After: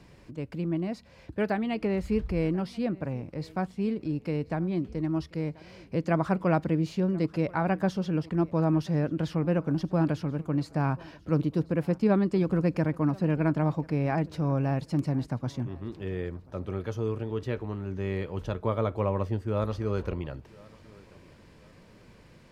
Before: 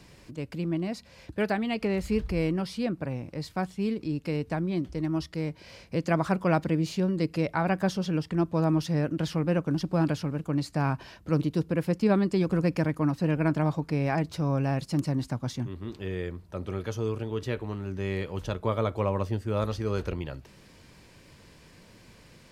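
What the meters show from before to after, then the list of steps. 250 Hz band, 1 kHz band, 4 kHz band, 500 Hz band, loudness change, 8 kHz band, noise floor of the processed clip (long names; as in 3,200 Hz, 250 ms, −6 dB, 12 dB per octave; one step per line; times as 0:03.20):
0.0 dB, −1.0 dB, −6.0 dB, −0.5 dB, 0.0 dB, can't be measured, −54 dBFS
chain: high-shelf EQ 2,900 Hz −9.5 dB
feedback echo with a high-pass in the loop 1,035 ms, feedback 34%, high-pass 160 Hz, level −22.5 dB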